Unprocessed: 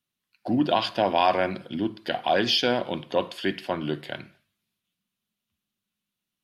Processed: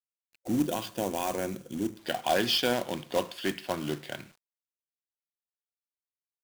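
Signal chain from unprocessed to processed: companded quantiser 4-bit; spectral gain 0.42–1.98, 550–5500 Hz -8 dB; gain -4 dB

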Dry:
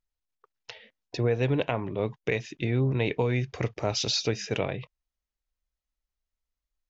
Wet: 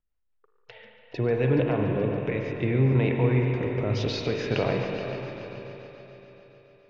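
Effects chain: LPF 2300 Hz 12 dB/oct; in parallel at +2 dB: vocal rider; on the sum: limiter -12 dBFS, peak gain reduction 7 dB; rotary speaker horn 5 Hz, later 0.6 Hz, at 0.41; on a send: multi-head echo 0.142 s, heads first and third, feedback 60%, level -13 dB; on the sum: spring tank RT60 3.7 s, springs 38/47/56 ms, chirp 60 ms, DRR 2 dB; gain -1.5 dB

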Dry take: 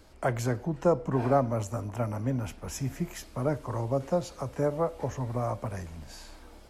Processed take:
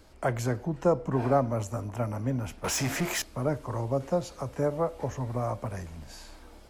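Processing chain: 2.64–3.22 overdrive pedal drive 25 dB, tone 7400 Hz, clips at -20 dBFS

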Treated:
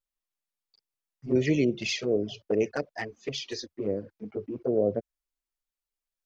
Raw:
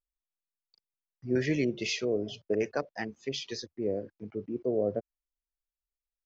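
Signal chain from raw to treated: low shelf 95 Hz -2.5 dB; envelope flanger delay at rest 9.3 ms, full sweep at -24.5 dBFS; gain +5 dB

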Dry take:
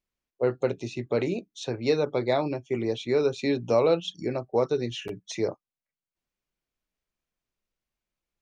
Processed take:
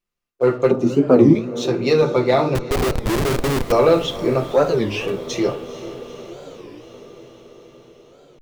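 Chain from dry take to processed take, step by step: small resonant body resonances 1200/2700 Hz, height 10 dB, ringing for 45 ms; reverb RT60 0.50 s, pre-delay 6 ms, DRR 2 dB; sample leveller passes 1; 0.71–1.36 graphic EQ 250/1000/2000/4000 Hz +12/+7/-11/-7 dB; 2.55–3.72 Schmitt trigger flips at -21 dBFS; diffused feedback echo 0.46 s, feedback 69%, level -14.5 dB; record warp 33 1/3 rpm, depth 250 cents; gain +2.5 dB

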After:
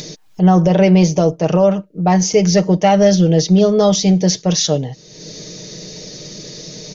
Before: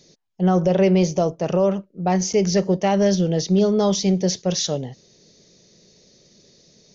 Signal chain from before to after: comb 6.5 ms, depth 52%; upward compressor, threshold -24 dBFS; gain +5.5 dB

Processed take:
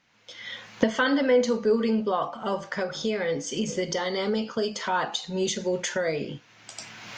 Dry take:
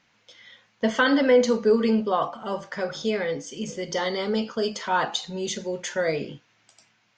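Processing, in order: recorder AGC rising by 29 dB/s; gain -3 dB

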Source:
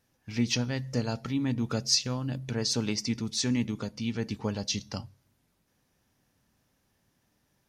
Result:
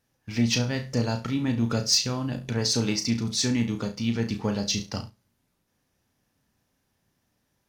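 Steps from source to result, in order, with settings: flutter echo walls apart 5.9 m, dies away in 0.27 s; sample leveller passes 1

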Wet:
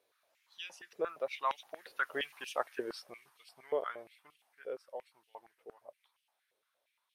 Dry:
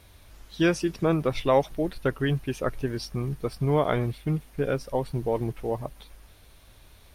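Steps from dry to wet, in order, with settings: Doppler pass-by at 2.38, 11 m/s, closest 4.2 m; stepped high-pass 8.6 Hz 460–2900 Hz; gain -6 dB

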